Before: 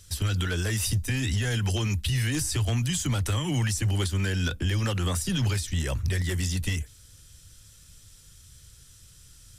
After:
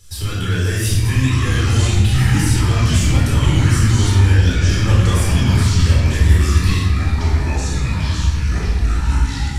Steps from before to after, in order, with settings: shoebox room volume 750 m³, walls mixed, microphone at 4.1 m; echoes that change speed 0.698 s, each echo -5 st, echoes 2; gain -2 dB

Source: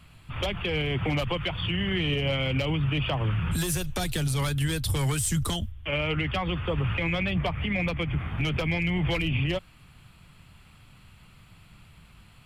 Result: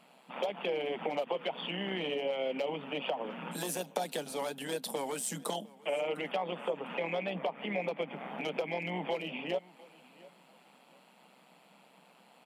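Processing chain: band shelf 640 Hz +12 dB 1.3 oct; compressor, threshold -24 dBFS, peak gain reduction 10 dB; AM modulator 130 Hz, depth 40%; brick-wall FIR high-pass 170 Hz; on a send: feedback echo 0.704 s, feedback 26%, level -22 dB; on the sum: gain -3.5 dB

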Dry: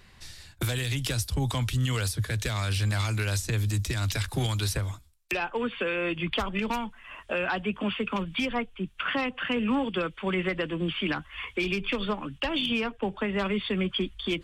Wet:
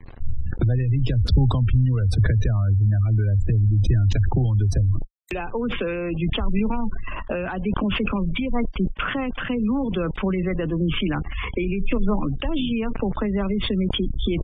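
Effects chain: compressor 8:1, threshold -34 dBFS, peak gain reduction 11.5 dB; requantised 8-bit, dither none; tilt -3.5 dB/oct; spectral gate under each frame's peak -30 dB strong; sustainer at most 27 dB/s; gain +7 dB

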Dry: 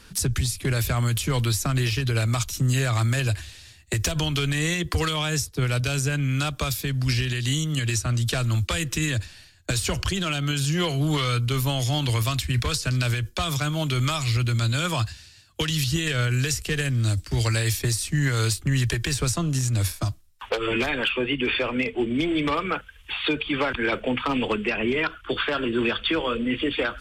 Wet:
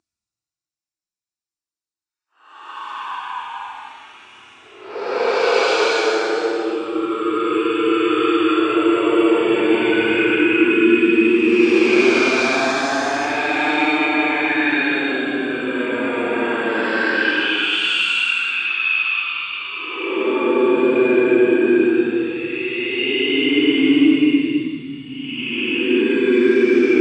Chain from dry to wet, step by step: gate with hold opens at -40 dBFS; Paulstretch 23×, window 0.05 s, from 20.29; speaker cabinet 320–7700 Hz, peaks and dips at 320 Hz +9 dB, 550 Hz -8 dB, 1900 Hz -6 dB, 3200 Hz -9 dB; gain +9 dB

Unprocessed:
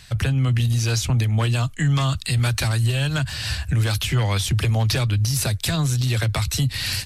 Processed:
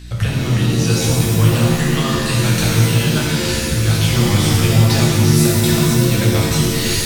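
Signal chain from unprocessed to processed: hum 60 Hz, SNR 16 dB; shimmer reverb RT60 1.6 s, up +7 st, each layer -2 dB, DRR -3.5 dB; gain -1 dB

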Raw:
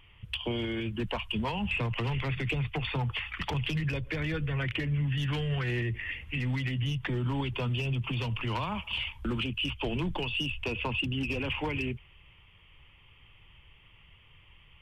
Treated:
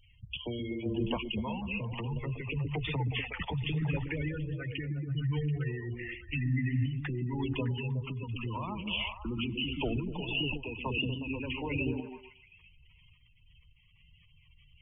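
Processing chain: spectral gate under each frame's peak -15 dB strong; delay with a stepping band-pass 0.122 s, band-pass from 210 Hz, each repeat 0.7 oct, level -0.5 dB; random-step tremolo

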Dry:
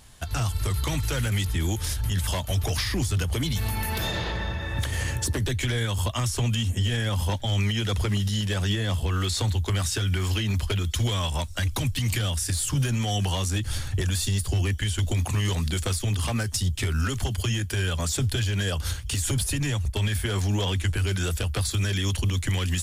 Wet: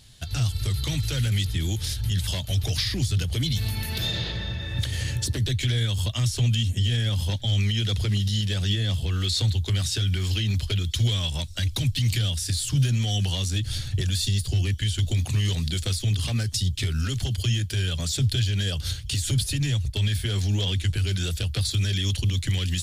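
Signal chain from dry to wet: graphic EQ 125/1000/4000 Hz +8/-8/+10 dB; gain -4 dB

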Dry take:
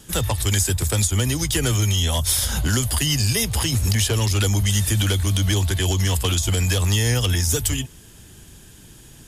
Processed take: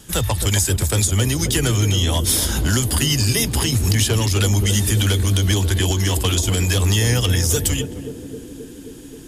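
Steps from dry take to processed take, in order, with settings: 1.67–2.2 high shelf 8100 Hz -5 dB; narrowing echo 0.265 s, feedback 85%, band-pass 310 Hz, level -6 dB; gain +2 dB

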